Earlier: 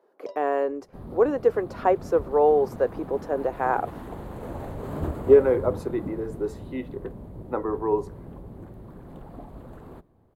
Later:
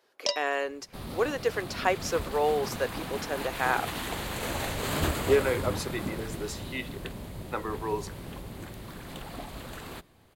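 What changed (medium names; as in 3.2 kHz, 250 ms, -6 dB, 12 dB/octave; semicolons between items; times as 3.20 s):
speech -8.5 dB; first sound +6.5 dB; master: remove FFT filter 410 Hz 0 dB, 1 kHz -5 dB, 2.5 kHz -21 dB, 5.4 kHz -25 dB, 12 kHz -19 dB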